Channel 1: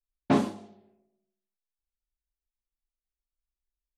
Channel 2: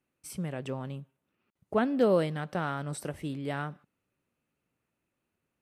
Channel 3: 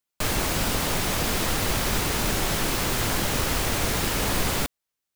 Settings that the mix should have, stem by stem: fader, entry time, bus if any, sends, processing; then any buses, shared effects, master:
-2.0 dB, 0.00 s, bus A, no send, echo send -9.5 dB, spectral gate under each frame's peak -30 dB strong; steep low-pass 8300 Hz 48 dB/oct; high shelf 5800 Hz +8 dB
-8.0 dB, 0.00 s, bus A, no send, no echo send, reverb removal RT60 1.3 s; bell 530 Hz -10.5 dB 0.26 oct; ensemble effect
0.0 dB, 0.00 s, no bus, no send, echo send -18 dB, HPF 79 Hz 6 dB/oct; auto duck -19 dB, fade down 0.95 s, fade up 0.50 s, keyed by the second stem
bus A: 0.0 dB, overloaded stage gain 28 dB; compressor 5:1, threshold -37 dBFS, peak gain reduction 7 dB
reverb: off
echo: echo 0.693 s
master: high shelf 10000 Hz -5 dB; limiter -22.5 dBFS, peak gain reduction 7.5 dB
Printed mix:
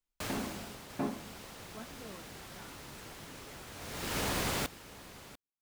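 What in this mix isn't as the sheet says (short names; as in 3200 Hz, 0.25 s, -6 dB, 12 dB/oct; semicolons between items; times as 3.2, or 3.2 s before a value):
stem 2 -8.0 dB -> -19.0 dB; stem 3 0.0 dB -> -6.5 dB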